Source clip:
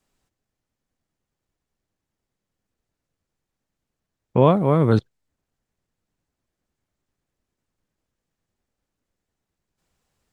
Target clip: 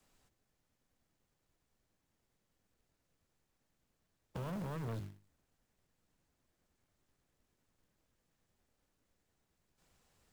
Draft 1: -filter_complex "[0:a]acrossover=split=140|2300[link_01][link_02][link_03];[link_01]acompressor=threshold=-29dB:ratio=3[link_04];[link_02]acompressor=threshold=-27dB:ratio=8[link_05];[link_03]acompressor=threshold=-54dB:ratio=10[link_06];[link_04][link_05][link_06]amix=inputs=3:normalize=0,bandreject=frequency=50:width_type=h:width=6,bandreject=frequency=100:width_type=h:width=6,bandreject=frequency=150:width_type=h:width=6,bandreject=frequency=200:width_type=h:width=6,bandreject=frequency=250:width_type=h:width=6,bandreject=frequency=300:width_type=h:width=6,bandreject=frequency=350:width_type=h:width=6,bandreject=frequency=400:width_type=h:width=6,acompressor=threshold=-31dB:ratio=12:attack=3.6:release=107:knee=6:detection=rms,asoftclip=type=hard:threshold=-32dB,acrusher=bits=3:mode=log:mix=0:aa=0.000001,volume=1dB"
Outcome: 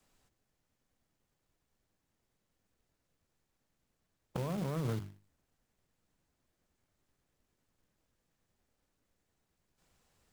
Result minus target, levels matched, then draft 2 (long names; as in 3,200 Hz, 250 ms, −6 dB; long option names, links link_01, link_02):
hard clipping: distortion −8 dB
-filter_complex "[0:a]acrossover=split=140|2300[link_01][link_02][link_03];[link_01]acompressor=threshold=-29dB:ratio=3[link_04];[link_02]acompressor=threshold=-27dB:ratio=8[link_05];[link_03]acompressor=threshold=-54dB:ratio=10[link_06];[link_04][link_05][link_06]amix=inputs=3:normalize=0,bandreject=frequency=50:width_type=h:width=6,bandreject=frequency=100:width_type=h:width=6,bandreject=frequency=150:width_type=h:width=6,bandreject=frequency=200:width_type=h:width=6,bandreject=frequency=250:width_type=h:width=6,bandreject=frequency=300:width_type=h:width=6,bandreject=frequency=350:width_type=h:width=6,bandreject=frequency=400:width_type=h:width=6,acompressor=threshold=-31dB:ratio=12:attack=3.6:release=107:knee=6:detection=rms,asoftclip=type=hard:threshold=-40dB,acrusher=bits=3:mode=log:mix=0:aa=0.000001,volume=1dB"